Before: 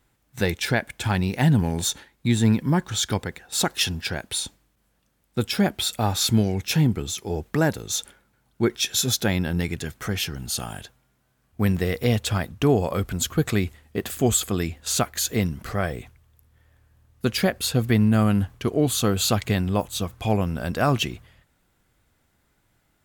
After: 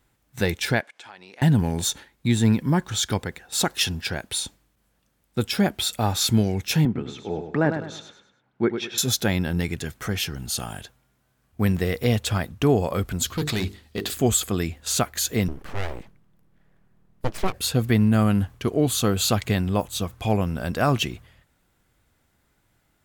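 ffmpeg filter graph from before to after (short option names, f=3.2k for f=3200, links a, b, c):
-filter_complex "[0:a]asettb=1/sr,asplit=3[a][b][c];[a]atrim=end=0.814[d];[b]atrim=start=0.81:end=1.42,asetpts=PTS-STARTPTS,afade=t=in:d=0.004:c=qsin,afade=t=out:st=0.606:d=0.004:c=qsin,highpass=510,lowpass=6.1k,acompressor=threshold=-45dB:ratio=3:attack=3.2:release=140:knee=1:detection=peak[e];[c]atrim=start=1.416[f];[d][e]acrossfade=d=0.004:c1=hsin:c2=qsin[g];[g][f]acrossfade=d=0.004:c1=qsin:c2=hsin,asettb=1/sr,asplit=3[h][i][j];[h]atrim=end=6.854[k];[i]atrim=start=6.85:end=8.98,asetpts=PTS-STARTPTS,afade=t=in:d=0.004:c=qsin,afade=t=out:st=2.126:d=0.004:c=qsin,highpass=150,lowpass=2.3k,aecho=1:1:102|204|306|408:0.398|0.143|0.0516|0.0186,atrim=end_sample=93933[l];[j]atrim=start=8.976[m];[k][l]acrossfade=d=0.004:c1=hsin:c2=qsin[n];[n][m]acrossfade=d=0.004:c1=qsin:c2=hsin,asettb=1/sr,asplit=3[o][p][q];[o]atrim=end=13.264[r];[p]atrim=start=13.26:end=14.14,asetpts=PTS-STARTPTS,afade=t=in:d=0.004:c=qsin,afade=t=out:st=0.876:d=0.004:c=qsin,equalizer=f=4.2k:w=1.5:g=11,bandreject=f=50:t=h:w=6,bandreject=f=100:t=h:w=6,bandreject=f=150:t=h:w=6,bandreject=f=200:t=h:w=6,bandreject=f=250:t=h:w=6,bandreject=f=300:t=h:w=6,bandreject=f=350:t=h:w=6,bandreject=f=400:t=h:w=6,bandreject=f=450:t=h:w=6,asoftclip=type=hard:threshold=-21dB[s];[q]atrim=start=14.136[t];[r][s]acrossfade=d=0.004:c1=hsin:c2=qsin[u];[u][t]acrossfade=d=0.004:c1=qsin:c2=hsin,asettb=1/sr,asplit=3[v][w][x];[v]atrim=end=15.484[y];[w]atrim=start=15.48:end=17.54,asetpts=PTS-STARTPTS,afade=t=in:d=0.004:c=qsin,afade=t=out:st=2.056:d=0.004:c=qsin,highshelf=f=2.2k:g=-11,aeval=exprs='abs(val(0))':c=same[z];[x]atrim=start=17.536[aa];[y][z]acrossfade=d=0.004:c1=hsin:c2=qsin[ab];[ab][aa]acrossfade=d=0.004:c1=qsin:c2=hsin"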